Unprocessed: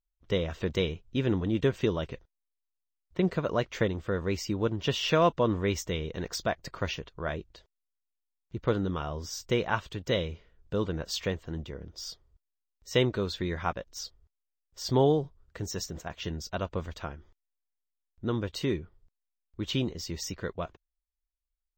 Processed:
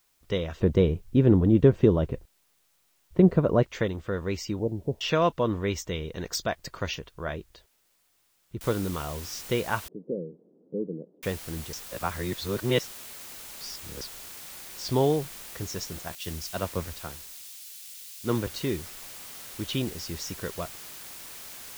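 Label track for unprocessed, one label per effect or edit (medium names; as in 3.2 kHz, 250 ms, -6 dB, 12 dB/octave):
0.600000	3.630000	tilt shelf lows +9.5 dB, about 1.2 kHz
4.590000	5.010000	steep low-pass 860 Hz 72 dB/octave
6.160000	6.990000	treble shelf 5.8 kHz +9 dB
8.610000	8.610000	noise floor step -69 dB -43 dB
9.880000	11.230000	Chebyshev band-pass 170–480 Hz, order 3
11.730000	14.010000	reverse
16.150000	18.470000	three bands expanded up and down depth 100%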